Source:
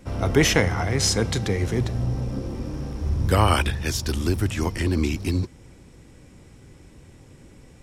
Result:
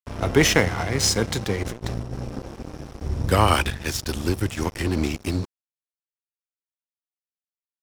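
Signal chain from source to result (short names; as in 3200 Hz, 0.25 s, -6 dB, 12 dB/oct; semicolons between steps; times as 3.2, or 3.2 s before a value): low shelf 250 Hz -3 dB; 1.63–2.14 negative-ratio compressor -28 dBFS, ratio -0.5; crossover distortion -33 dBFS; gain +3 dB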